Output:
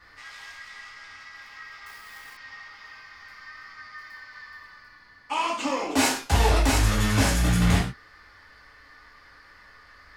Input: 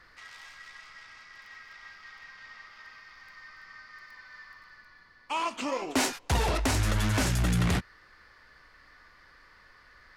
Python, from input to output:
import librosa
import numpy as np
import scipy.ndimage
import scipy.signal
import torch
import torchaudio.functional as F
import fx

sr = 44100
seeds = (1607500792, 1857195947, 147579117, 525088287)

y = fx.rev_gated(x, sr, seeds[0], gate_ms=150, shape='falling', drr_db=-5.5)
y = fx.quant_companded(y, sr, bits=4, at=(1.86, 2.37))
y = F.gain(torch.from_numpy(y), -1.5).numpy()